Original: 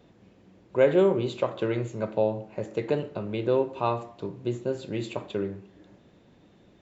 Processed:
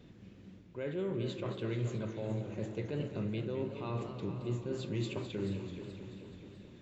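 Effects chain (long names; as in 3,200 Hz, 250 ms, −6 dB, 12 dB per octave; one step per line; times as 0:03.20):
reversed playback
downward compressor, threshold −31 dBFS, peak gain reduction 15 dB
reversed playback
parametric band 740 Hz −12.5 dB 1.9 octaves
in parallel at −2.5 dB: brickwall limiter −37.5 dBFS, peak gain reduction 10.5 dB
on the sum: high-shelf EQ 4,300 Hz −7.5 dB
feedback delay with all-pass diffusion 454 ms, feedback 41%, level −12.5 dB
feedback echo with a swinging delay time 216 ms, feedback 72%, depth 165 cents, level −10.5 dB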